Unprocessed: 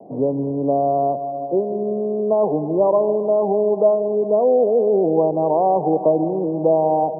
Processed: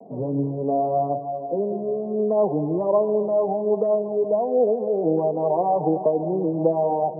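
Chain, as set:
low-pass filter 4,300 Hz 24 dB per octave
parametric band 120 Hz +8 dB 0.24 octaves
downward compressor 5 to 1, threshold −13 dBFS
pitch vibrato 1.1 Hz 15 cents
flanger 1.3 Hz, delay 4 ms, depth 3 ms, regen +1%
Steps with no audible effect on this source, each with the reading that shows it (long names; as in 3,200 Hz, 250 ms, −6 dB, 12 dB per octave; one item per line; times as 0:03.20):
low-pass filter 4,300 Hz: nothing at its input above 1,100 Hz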